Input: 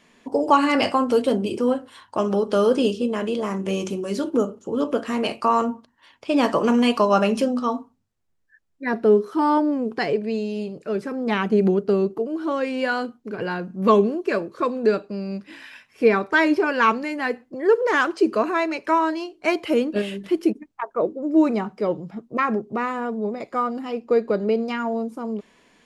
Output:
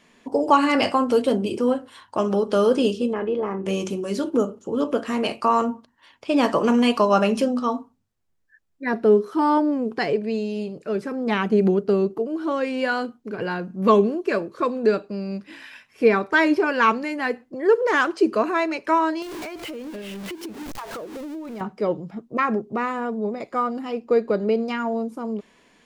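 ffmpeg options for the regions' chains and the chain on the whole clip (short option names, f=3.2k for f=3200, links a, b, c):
-filter_complex "[0:a]asettb=1/sr,asplit=3[a][b][c];[a]atrim=end=3.134[d];[b]atrim=start=3.13:end=3.66,asetpts=PTS-STARTPTS,afade=t=in:d=0.004:c=qsin,afade=t=out:st=0.526:d=0.004:c=qsin,lowpass=1.7k,aecho=1:1:2.4:0.38,atrim=end_sample=23373[e];[c]atrim=start=3.656[f];[d][e]acrossfade=d=0.004:c1=hsin:c2=qsin[g];[g][f]acrossfade=d=0.004:c1=qsin:c2=hsin,asettb=1/sr,asplit=3[h][i][j];[h]atrim=end=19.224[k];[i]atrim=start=19.22:end=21.61,asetpts=PTS-STARTPTS,afade=t=in:d=0.004:c=qsin,afade=t=out:st=2.386:d=0.004:c=qsin,aeval=exprs='val(0)+0.5*0.0447*sgn(val(0))':c=same,acompressor=threshold=-31dB:ratio=12:attack=3.2:release=140:knee=1:detection=peak[l];[j]atrim=start=21.606[m];[k][l]acrossfade=d=0.004:c1=hsin:c2=qsin[n];[n][m]acrossfade=d=0.004:c1=qsin:c2=hsin"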